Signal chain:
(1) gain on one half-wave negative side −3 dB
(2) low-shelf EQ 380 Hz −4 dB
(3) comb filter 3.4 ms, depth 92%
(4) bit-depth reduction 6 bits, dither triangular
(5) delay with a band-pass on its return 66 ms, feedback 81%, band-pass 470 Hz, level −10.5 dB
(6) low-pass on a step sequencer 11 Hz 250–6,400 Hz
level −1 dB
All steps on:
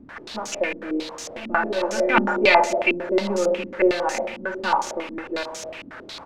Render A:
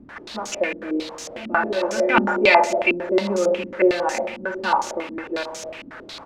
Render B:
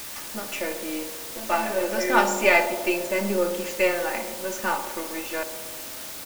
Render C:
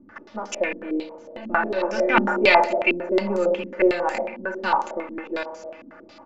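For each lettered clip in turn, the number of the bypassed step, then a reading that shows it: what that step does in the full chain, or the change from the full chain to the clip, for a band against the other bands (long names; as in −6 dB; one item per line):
1, distortion level −15 dB
6, 8 kHz band +6.0 dB
4, distortion level −10 dB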